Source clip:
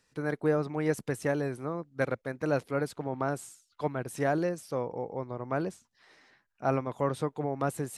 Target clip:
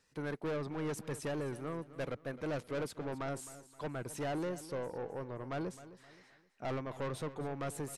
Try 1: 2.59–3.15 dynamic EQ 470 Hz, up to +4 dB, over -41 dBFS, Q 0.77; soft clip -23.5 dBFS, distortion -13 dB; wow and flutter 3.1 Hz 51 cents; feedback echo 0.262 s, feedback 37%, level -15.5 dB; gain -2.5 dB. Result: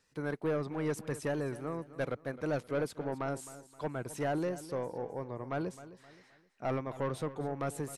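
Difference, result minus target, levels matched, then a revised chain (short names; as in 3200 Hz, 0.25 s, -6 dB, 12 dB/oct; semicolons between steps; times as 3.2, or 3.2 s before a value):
soft clip: distortion -6 dB
2.59–3.15 dynamic EQ 470 Hz, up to +4 dB, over -41 dBFS, Q 0.77; soft clip -31 dBFS, distortion -7 dB; wow and flutter 3.1 Hz 51 cents; feedback echo 0.262 s, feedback 37%, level -15.5 dB; gain -2.5 dB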